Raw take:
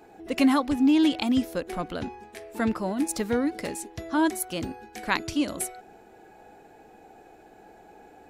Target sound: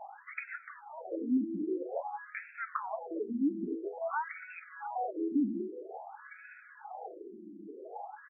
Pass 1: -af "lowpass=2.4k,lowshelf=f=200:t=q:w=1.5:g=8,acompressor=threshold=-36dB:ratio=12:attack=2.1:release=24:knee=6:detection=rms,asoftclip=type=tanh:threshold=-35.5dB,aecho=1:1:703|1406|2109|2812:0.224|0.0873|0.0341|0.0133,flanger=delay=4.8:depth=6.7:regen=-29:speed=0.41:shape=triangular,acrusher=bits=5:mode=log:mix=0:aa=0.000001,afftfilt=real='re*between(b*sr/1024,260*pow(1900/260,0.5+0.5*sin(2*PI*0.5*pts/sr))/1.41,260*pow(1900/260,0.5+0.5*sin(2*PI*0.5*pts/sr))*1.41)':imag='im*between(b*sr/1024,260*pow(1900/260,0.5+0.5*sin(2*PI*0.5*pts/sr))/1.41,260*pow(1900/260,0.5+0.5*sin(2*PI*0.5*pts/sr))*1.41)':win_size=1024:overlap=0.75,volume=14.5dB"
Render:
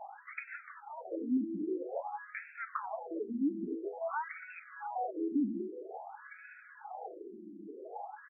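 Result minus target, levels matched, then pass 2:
soft clip: distortion +14 dB
-af "lowpass=2.4k,lowshelf=f=200:t=q:w=1.5:g=8,acompressor=threshold=-36dB:ratio=12:attack=2.1:release=24:knee=6:detection=rms,asoftclip=type=tanh:threshold=-27dB,aecho=1:1:703|1406|2109|2812:0.224|0.0873|0.0341|0.0133,flanger=delay=4.8:depth=6.7:regen=-29:speed=0.41:shape=triangular,acrusher=bits=5:mode=log:mix=0:aa=0.000001,afftfilt=real='re*between(b*sr/1024,260*pow(1900/260,0.5+0.5*sin(2*PI*0.5*pts/sr))/1.41,260*pow(1900/260,0.5+0.5*sin(2*PI*0.5*pts/sr))*1.41)':imag='im*between(b*sr/1024,260*pow(1900/260,0.5+0.5*sin(2*PI*0.5*pts/sr))/1.41,260*pow(1900/260,0.5+0.5*sin(2*PI*0.5*pts/sr))*1.41)':win_size=1024:overlap=0.75,volume=14.5dB"

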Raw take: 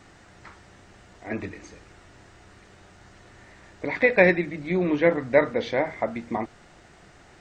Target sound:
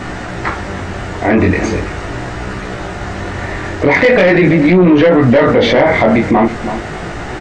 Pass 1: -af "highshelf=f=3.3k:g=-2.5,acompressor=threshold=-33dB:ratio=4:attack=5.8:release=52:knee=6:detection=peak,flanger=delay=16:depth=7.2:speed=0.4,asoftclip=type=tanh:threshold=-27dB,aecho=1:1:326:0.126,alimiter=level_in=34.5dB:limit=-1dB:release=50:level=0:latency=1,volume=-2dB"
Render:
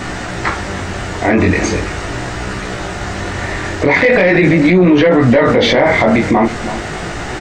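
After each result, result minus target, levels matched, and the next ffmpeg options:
8000 Hz band +8.0 dB; compressor: peak gain reduction +5.5 dB
-af "highshelf=f=3.3k:g=-10.5,acompressor=threshold=-33dB:ratio=4:attack=5.8:release=52:knee=6:detection=peak,flanger=delay=16:depth=7.2:speed=0.4,asoftclip=type=tanh:threshold=-27dB,aecho=1:1:326:0.126,alimiter=level_in=34.5dB:limit=-1dB:release=50:level=0:latency=1,volume=-2dB"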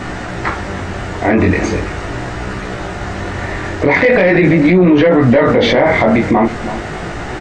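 compressor: peak gain reduction +5 dB
-af "highshelf=f=3.3k:g=-10.5,acompressor=threshold=-26.5dB:ratio=4:attack=5.8:release=52:knee=6:detection=peak,flanger=delay=16:depth=7.2:speed=0.4,asoftclip=type=tanh:threshold=-27dB,aecho=1:1:326:0.126,alimiter=level_in=34.5dB:limit=-1dB:release=50:level=0:latency=1,volume=-2dB"

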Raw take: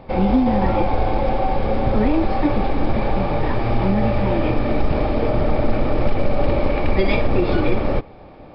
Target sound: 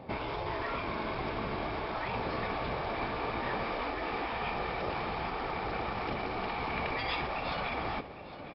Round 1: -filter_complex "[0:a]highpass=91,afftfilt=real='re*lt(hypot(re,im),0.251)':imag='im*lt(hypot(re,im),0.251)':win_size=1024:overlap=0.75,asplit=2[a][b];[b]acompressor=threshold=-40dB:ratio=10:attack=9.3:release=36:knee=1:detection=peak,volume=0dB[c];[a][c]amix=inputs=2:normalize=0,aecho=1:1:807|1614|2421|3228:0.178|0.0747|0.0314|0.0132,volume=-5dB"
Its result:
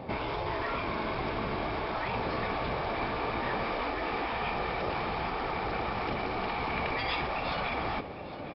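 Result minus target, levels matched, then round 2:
compressor: peak gain reduction +13.5 dB
-af "highpass=91,afftfilt=real='re*lt(hypot(re,im),0.251)':imag='im*lt(hypot(re,im),0.251)':win_size=1024:overlap=0.75,aecho=1:1:807|1614|2421|3228:0.178|0.0747|0.0314|0.0132,volume=-5dB"

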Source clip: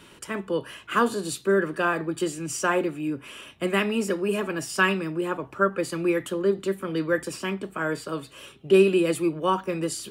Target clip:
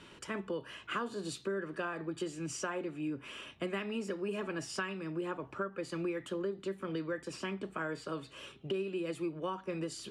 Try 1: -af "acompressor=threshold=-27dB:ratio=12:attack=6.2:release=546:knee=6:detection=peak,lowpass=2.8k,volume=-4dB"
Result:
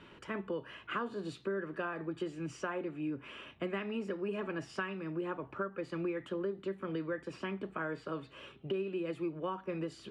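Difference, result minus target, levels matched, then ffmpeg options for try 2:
8000 Hz band -13.0 dB
-af "acompressor=threshold=-27dB:ratio=12:attack=6.2:release=546:knee=6:detection=peak,lowpass=6.5k,volume=-4dB"

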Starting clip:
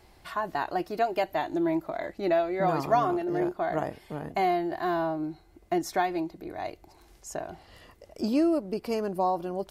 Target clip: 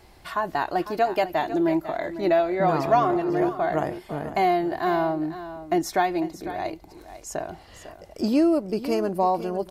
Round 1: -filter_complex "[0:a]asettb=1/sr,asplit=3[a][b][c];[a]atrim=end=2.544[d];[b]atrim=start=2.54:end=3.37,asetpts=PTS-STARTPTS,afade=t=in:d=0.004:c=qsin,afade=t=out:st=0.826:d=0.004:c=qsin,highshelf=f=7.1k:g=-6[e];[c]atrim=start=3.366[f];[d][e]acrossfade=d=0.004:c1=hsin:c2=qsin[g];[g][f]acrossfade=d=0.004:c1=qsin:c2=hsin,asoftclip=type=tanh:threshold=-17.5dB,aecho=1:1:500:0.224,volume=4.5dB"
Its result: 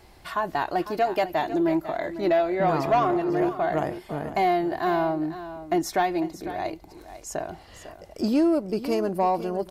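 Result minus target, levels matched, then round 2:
soft clip: distortion +14 dB
-filter_complex "[0:a]asettb=1/sr,asplit=3[a][b][c];[a]atrim=end=2.544[d];[b]atrim=start=2.54:end=3.37,asetpts=PTS-STARTPTS,afade=t=in:d=0.004:c=qsin,afade=t=out:st=0.826:d=0.004:c=qsin,highshelf=f=7.1k:g=-6[e];[c]atrim=start=3.366[f];[d][e]acrossfade=d=0.004:c1=hsin:c2=qsin[g];[g][f]acrossfade=d=0.004:c1=qsin:c2=hsin,asoftclip=type=tanh:threshold=-9dB,aecho=1:1:500:0.224,volume=4.5dB"

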